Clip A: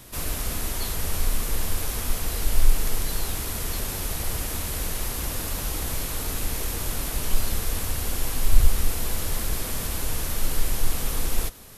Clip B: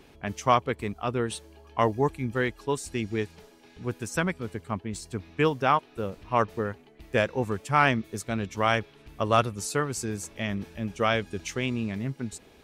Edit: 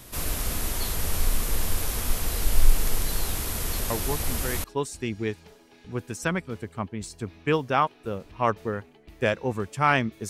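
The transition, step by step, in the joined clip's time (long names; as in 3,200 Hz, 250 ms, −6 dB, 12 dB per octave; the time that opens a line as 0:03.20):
clip A
0:03.90: mix in clip B from 0:01.82 0.74 s −6.5 dB
0:04.64: continue with clip B from 0:02.56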